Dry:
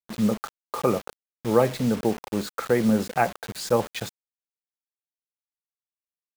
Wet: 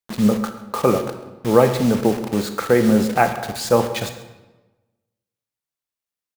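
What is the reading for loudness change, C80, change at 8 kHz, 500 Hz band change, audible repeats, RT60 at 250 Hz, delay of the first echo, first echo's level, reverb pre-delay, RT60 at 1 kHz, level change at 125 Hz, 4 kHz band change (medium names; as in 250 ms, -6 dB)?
+6.0 dB, 11.0 dB, +6.0 dB, +6.5 dB, 1, 1.2 s, 133 ms, -18.5 dB, 20 ms, 1.1 s, +6.0 dB, +6.0 dB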